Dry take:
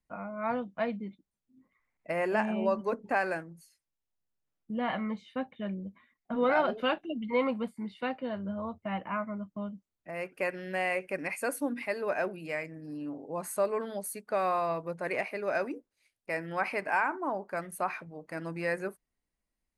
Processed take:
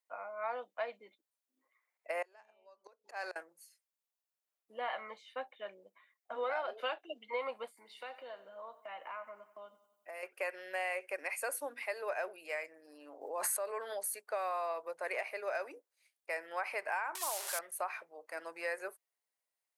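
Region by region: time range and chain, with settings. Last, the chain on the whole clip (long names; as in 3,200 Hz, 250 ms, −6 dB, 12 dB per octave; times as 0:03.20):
0:02.22–0:03.36: flat-topped bell 4,900 Hz +9 dB 1.1 octaves + volume swells 249 ms + gate with flip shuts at −25 dBFS, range −29 dB
0:07.77–0:10.23: high-shelf EQ 5,500 Hz +8 dB + downward compressor 4 to 1, threshold −38 dBFS + repeating echo 92 ms, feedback 58%, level −16.5 dB
0:13.21–0:14.21: parametric band 1,700 Hz +4 dB 0.39 octaves + background raised ahead of every attack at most 33 dB per second
0:17.15–0:17.59: linear delta modulator 64 kbit/s, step −35 dBFS + RIAA equalisation recording
whole clip: high-pass filter 490 Hz 24 dB per octave; high-shelf EQ 9,200 Hz +7 dB; downward compressor 6 to 1, threshold −30 dBFS; level −2.5 dB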